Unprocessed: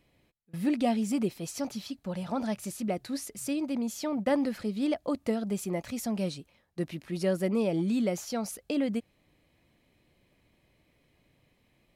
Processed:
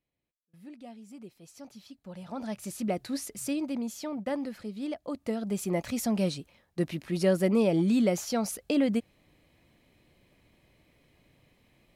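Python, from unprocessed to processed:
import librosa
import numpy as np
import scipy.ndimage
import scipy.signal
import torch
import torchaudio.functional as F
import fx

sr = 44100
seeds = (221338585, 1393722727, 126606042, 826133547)

y = fx.gain(x, sr, db=fx.line((1.02, -19.5), (2.29, -7.0), (2.82, 1.0), (3.42, 1.0), (4.39, -6.0), (5.03, -6.0), (5.78, 3.5)))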